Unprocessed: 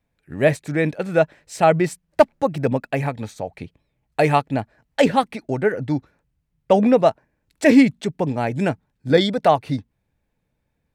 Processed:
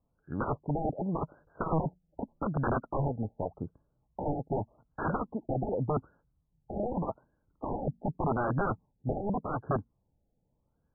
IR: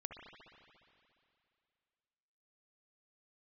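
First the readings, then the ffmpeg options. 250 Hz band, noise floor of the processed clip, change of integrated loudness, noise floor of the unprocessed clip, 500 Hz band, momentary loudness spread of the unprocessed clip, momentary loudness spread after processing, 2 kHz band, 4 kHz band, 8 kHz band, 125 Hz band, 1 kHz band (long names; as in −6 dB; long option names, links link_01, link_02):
−14.5 dB, −77 dBFS, −14.0 dB, −73 dBFS, −15.5 dB, 13 LU, 10 LU, −17.5 dB, below −40 dB, below −40 dB, −8.0 dB, −12.0 dB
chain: -af "aeval=exprs='(mod(8.41*val(0)+1,2)-1)/8.41':channel_layout=same,afftfilt=real='re*lt(b*sr/1024,830*pow(1700/830,0.5+0.5*sin(2*PI*0.85*pts/sr)))':imag='im*lt(b*sr/1024,830*pow(1700/830,0.5+0.5*sin(2*PI*0.85*pts/sr)))':win_size=1024:overlap=0.75,volume=-3dB"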